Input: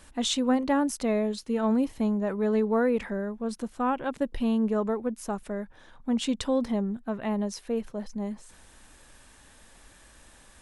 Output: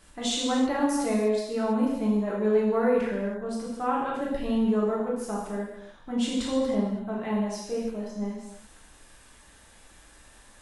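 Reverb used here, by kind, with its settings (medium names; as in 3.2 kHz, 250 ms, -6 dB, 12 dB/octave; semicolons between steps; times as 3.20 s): gated-style reverb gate 350 ms falling, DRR -5.5 dB; trim -5.5 dB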